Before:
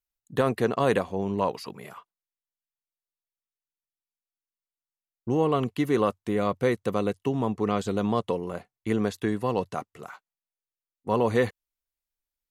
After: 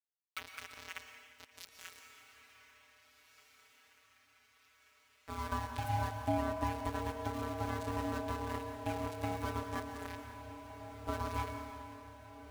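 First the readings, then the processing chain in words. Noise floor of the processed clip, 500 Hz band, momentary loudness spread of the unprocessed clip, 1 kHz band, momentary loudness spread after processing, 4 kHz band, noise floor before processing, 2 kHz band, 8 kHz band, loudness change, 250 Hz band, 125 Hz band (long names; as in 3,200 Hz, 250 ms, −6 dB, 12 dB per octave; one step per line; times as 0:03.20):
−69 dBFS, −16.5 dB, 15 LU, −7.5 dB, 17 LU, −7.5 dB, below −85 dBFS, −8.5 dB, −4.5 dB, −12.5 dB, −14.0 dB, −8.5 dB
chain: mains-hum notches 60/120/180/240/300/360 Hz
dynamic equaliser 3,800 Hz, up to −5 dB, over −53 dBFS, Q 2.5
downward compressor 16 to 1, threshold −30 dBFS, peak gain reduction 13 dB
high-pass filter sweep 2,000 Hz → 77 Hz, 0:04.34–0:07.16
phases set to zero 177 Hz
centre clipping without the shift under −38.5 dBFS
ring modulation 460 Hz
on a send: feedback delay with all-pass diffusion 1,732 ms, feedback 59%, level −12 dB
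on the sum: dense smooth reverb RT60 1.7 s, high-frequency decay 1×, pre-delay 100 ms, DRR 7 dB
feedback echo with a swinging delay time 175 ms, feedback 60%, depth 89 cents, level −17 dB
level +1 dB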